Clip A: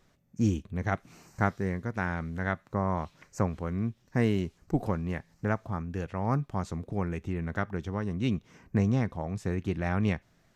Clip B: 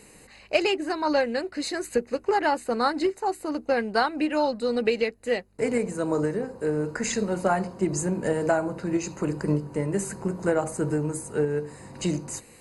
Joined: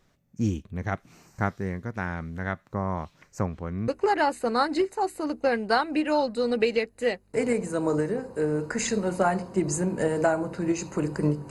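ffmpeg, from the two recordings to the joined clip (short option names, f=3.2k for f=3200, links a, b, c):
-filter_complex "[0:a]asettb=1/sr,asplit=3[a][b][c];[a]atrim=end=3.464[d];[b]atrim=start=3.46:end=3.88,asetpts=PTS-STARTPTS,afade=t=in:d=0.004:c=qsin,afade=t=out:st=0.416:d=0.004:c=qsin,highshelf=f=6.9k:g=-9[e];[c]atrim=start=3.876[f];[d][e]acrossfade=d=0.004:c1=hsin:c2=qsin[g];[g][f]acrossfade=d=0.004:c1=qsin:c2=hsin,apad=whole_dur=11.5,atrim=end=11.5,atrim=end=3.882[h];[1:a]atrim=start=2.128:end=9.75[i];[h][i]acrossfade=d=0.004:c1=hsin:c2=hsin"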